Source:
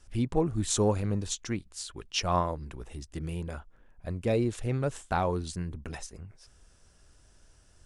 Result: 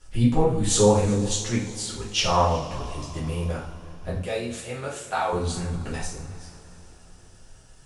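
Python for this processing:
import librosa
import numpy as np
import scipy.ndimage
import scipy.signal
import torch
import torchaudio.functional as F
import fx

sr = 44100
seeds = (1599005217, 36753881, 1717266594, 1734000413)

y = fx.highpass(x, sr, hz=1200.0, slope=6, at=(4.15, 5.33))
y = y + 10.0 ** (-22.0 / 20.0) * np.pad(y, (int(366 * sr / 1000.0), 0))[:len(y)]
y = fx.rev_double_slope(y, sr, seeds[0], early_s=0.46, late_s=4.4, knee_db=-22, drr_db=-7.5)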